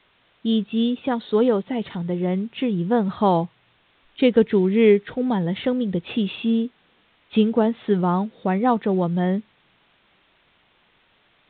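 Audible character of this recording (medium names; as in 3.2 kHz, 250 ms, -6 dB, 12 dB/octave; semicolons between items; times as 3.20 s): a quantiser's noise floor 10-bit, dither triangular; A-law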